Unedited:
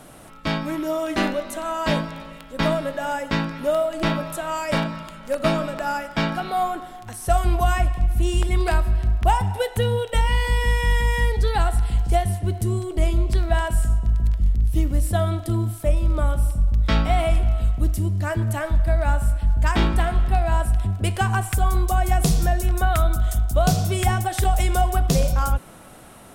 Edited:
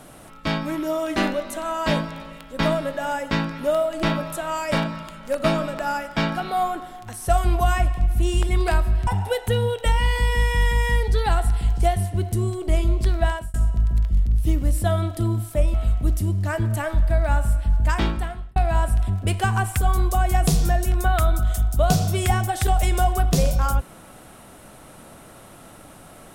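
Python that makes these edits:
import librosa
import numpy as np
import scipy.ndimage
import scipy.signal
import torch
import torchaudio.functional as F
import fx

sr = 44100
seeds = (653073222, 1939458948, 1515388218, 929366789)

y = fx.edit(x, sr, fx.cut(start_s=9.07, length_s=0.29),
    fx.fade_out_span(start_s=13.54, length_s=0.29),
    fx.cut(start_s=16.03, length_s=1.48),
    fx.fade_out_span(start_s=19.6, length_s=0.73), tone=tone)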